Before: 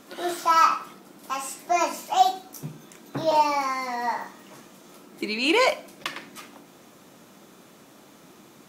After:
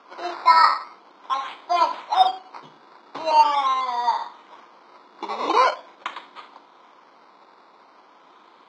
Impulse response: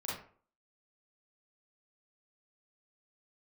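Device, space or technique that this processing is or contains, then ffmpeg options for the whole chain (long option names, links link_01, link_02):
circuit-bent sampling toy: -af "acrusher=samples=11:mix=1:aa=0.000001:lfo=1:lforange=6.6:lforate=0.43,highpass=600,equalizer=frequency=610:width_type=q:width=4:gain=-4,equalizer=frequency=1000:width_type=q:width=4:gain=7,equalizer=frequency=1800:width_type=q:width=4:gain=-8,equalizer=frequency=2700:width_type=q:width=4:gain=-9,lowpass=frequency=4300:width=0.5412,lowpass=frequency=4300:width=1.3066,volume=3.5dB"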